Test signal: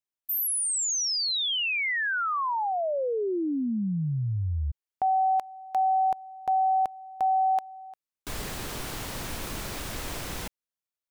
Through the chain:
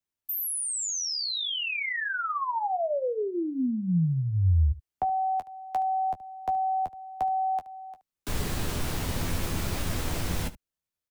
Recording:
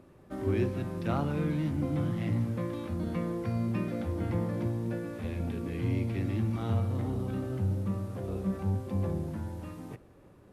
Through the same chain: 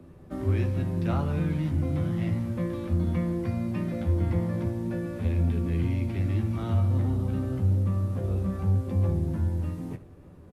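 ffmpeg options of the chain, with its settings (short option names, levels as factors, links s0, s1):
-filter_complex "[0:a]acrossover=split=81|170|570[s0][s1][s2][s3];[s0]acompressor=threshold=0.0112:ratio=4[s4];[s1]acompressor=threshold=0.00891:ratio=4[s5];[s2]acompressor=threshold=0.0112:ratio=4[s6];[s3]acompressor=threshold=0.0282:ratio=4[s7];[s4][s5][s6][s7]amix=inputs=4:normalize=0,lowshelf=f=250:g=10.5,asplit=2[s8][s9];[s9]aecho=0:1:12|23|73:0.447|0.188|0.133[s10];[s8][s10]amix=inputs=2:normalize=0"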